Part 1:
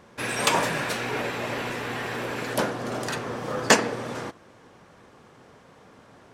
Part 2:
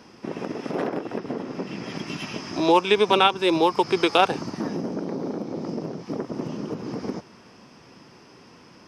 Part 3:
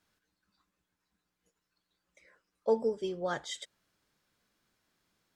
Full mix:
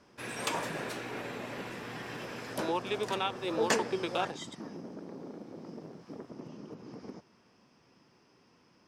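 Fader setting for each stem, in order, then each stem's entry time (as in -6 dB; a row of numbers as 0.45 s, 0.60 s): -11.5 dB, -15.0 dB, -5.0 dB; 0.00 s, 0.00 s, 0.90 s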